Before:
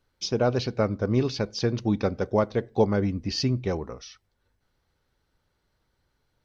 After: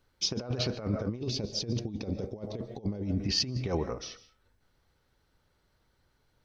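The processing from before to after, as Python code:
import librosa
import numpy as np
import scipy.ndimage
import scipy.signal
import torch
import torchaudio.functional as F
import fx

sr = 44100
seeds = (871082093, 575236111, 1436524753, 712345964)

y = fx.rev_freeverb(x, sr, rt60_s=0.41, hf_ratio=0.65, predelay_ms=100, drr_db=15.5)
y = fx.over_compress(y, sr, threshold_db=-28.0, ratio=-0.5)
y = fx.peak_eq(y, sr, hz=1400.0, db=-15.0, octaves=1.3, at=(1.19, 3.2))
y = y * librosa.db_to_amplitude(-2.5)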